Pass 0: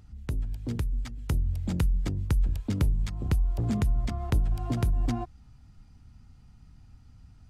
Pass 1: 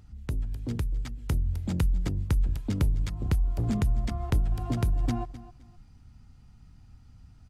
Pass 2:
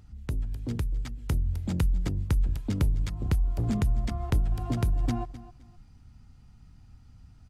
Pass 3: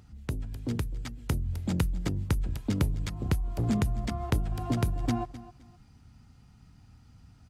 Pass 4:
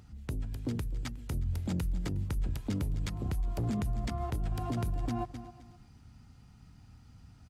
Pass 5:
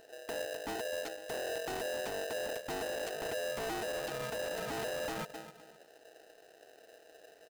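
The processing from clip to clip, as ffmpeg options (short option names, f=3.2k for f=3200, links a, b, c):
-af "aecho=1:1:258|516:0.15|0.0374"
-af anull
-af "highpass=f=110:p=1,volume=2.5dB"
-af "alimiter=level_in=1dB:limit=-24dB:level=0:latency=1:release=75,volume=-1dB,aecho=1:1:362:0.075"
-af "aeval=exprs='0.0335*(abs(mod(val(0)/0.0335+3,4)-2)-1)':c=same,aeval=exprs='val(0)*sgn(sin(2*PI*560*n/s))':c=same,volume=-3.5dB"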